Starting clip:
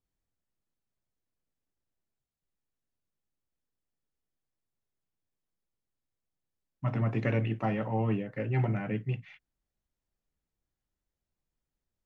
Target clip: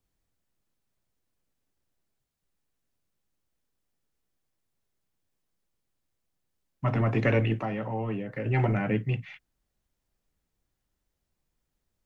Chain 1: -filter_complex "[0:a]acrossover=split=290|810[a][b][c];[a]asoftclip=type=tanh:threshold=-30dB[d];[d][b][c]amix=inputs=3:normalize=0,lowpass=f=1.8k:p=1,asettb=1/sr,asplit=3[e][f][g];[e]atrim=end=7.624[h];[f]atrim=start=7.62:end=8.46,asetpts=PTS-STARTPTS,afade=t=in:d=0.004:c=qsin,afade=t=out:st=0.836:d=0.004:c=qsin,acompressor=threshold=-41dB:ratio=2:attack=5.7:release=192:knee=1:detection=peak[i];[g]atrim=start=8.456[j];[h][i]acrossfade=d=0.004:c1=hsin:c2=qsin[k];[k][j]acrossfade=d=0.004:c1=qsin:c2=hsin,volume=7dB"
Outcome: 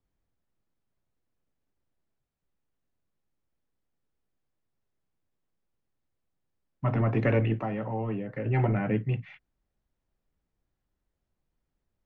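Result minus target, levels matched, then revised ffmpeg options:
2000 Hz band -3.0 dB
-filter_complex "[0:a]acrossover=split=290|810[a][b][c];[a]asoftclip=type=tanh:threshold=-30dB[d];[d][b][c]amix=inputs=3:normalize=0,asettb=1/sr,asplit=3[e][f][g];[e]atrim=end=7.624[h];[f]atrim=start=7.62:end=8.46,asetpts=PTS-STARTPTS,afade=t=in:d=0.004:c=qsin,afade=t=out:st=0.836:d=0.004:c=qsin,acompressor=threshold=-41dB:ratio=2:attack=5.7:release=192:knee=1:detection=peak[i];[g]atrim=start=8.456[j];[h][i]acrossfade=d=0.004:c1=hsin:c2=qsin[k];[k][j]acrossfade=d=0.004:c1=qsin:c2=hsin,volume=7dB"

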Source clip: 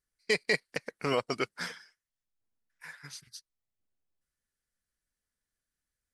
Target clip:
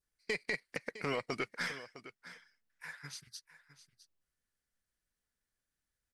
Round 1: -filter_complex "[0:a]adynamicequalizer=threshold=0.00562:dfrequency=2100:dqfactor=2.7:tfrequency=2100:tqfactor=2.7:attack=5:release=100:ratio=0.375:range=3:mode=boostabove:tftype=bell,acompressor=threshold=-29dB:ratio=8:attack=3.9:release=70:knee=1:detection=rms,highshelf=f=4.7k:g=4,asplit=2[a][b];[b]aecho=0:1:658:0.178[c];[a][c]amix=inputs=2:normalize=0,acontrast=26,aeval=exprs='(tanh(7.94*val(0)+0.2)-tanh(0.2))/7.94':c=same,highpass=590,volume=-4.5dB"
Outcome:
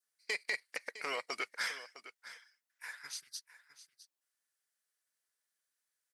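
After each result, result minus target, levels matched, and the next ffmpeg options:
500 Hz band -5.5 dB; 8000 Hz band +4.5 dB
-filter_complex "[0:a]adynamicequalizer=threshold=0.00562:dfrequency=2100:dqfactor=2.7:tfrequency=2100:tqfactor=2.7:attack=5:release=100:ratio=0.375:range=3:mode=boostabove:tftype=bell,acompressor=threshold=-29dB:ratio=8:attack=3.9:release=70:knee=1:detection=rms,highshelf=f=4.7k:g=4,asplit=2[a][b];[b]aecho=0:1:658:0.178[c];[a][c]amix=inputs=2:normalize=0,acontrast=26,aeval=exprs='(tanh(7.94*val(0)+0.2)-tanh(0.2))/7.94':c=same,volume=-4.5dB"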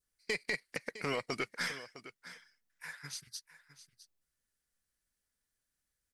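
8000 Hz band +3.5 dB
-filter_complex "[0:a]adynamicequalizer=threshold=0.00562:dfrequency=2100:dqfactor=2.7:tfrequency=2100:tqfactor=2.7:attack=5:release=100:ratio=0.375:range=3:mode=boostabove:tftype=bell,acompressor=threshold=-29dB:ratio=8:attack=3.9:release=70:knee=1:detection=rms,highshelf=f=4.7k:g=-3,asplit=2[a][b];[b]aecho=0:1:658:0.178[c];[a][c]amix=inputs=2:normalize=0,acontrast=26,aeval=exprs='(tanh(7.94*val(0)+0.2)-tanh(0.2))/7.94':c=same,volume=-4.5dB"

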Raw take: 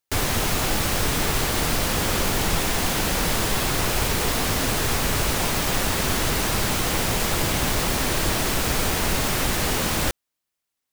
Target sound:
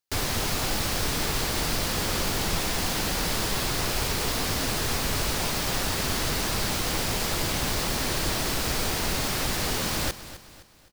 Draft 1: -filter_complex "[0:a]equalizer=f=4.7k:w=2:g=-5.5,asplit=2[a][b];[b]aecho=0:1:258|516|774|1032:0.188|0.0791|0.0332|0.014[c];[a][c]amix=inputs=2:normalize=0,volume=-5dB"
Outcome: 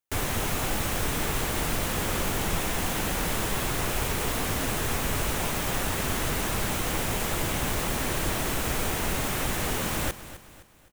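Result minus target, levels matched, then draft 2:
4000 Hz band -4.0 dB
-filter_complex "[0:a]equalizer=f=4.7k:w=2:g=4.5,asplit=2[a][b];[b]aecho=0:1:258|516|774|1032:0.188|0.0791|0.0332|0.014[c];[a][c]amix=inputs=2:normalize=0,volume=-5dB"

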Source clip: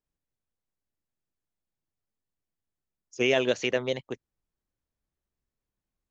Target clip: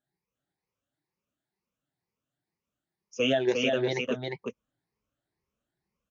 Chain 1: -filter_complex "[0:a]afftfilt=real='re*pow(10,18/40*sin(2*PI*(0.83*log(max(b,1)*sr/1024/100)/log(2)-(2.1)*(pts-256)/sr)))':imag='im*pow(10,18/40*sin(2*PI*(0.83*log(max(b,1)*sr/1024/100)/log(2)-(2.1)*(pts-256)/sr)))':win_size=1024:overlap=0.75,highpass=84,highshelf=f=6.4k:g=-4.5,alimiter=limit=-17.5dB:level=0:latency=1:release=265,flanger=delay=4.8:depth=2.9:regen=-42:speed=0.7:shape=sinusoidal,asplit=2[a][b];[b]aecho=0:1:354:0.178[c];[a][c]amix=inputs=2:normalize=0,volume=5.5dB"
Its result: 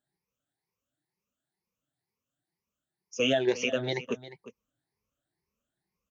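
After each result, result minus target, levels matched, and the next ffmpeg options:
echo-to-direct -11.5 dB; 8000 Hz band +4.0 dB
-filter_complex "[0:a]afftfilt=real='re*pow(10,18/40*sin(2*PI*(0.83*log(max(b,1)*sr/1024/100)/log(2)-(2.1)*(pts-256)/sr)))':imag='im*pow(10,18/40*sin(2*PI*(0.83*log(max(b,1)*sr/1024/100)/log(2)-(2.1)*(pts-256)/sr)))':win_size=1024:overlap=0.75,highpass=84,highshelf=f=6.4k:g=-4.5,alimiter=limit=-17.5dB:level=0:latency=1:release=265,flanger=delay=4.8:depth=2.9:regen=-42:speed=0.7:shape=sinusoidal,asplit=2[a][b];[b]aecho=0:1:354:0.668[c];[a][c]amix=inputs=2:normalize=0,volume=5.5dB"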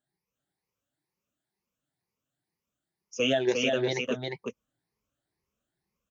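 8000 Hz band +4.5 dB
-filter_complex "[0:a]afftfilt=real='re*pow(10,18/40*sin(2*PI*(0.83*log(max(b,1)*sr/1024/100)/log(2)-(2.1)*(pts-256)/sr)))':imag='im*pow(10,18/40*sin(2*PI*(0.83*log(max(b,1)*sr/1024/100)/log(2)-(2.1)*(pts-256)/sr)))':win_size=1024:overlap=0.75,highpass=84,highshelf=f=6.4k:g=-14.5,alimiter=limit=-17.5dB:level=0:latency=1:release=265,flanger=delay=4.8:depth=2.9:regen=-42:speed=0.7:shape=sinusoidal,asplit=2[a][b];[b]aecho=0:1:354:0.668[c];[a][c]amix=inputs=2:normalize=0,volume=5.5dB"

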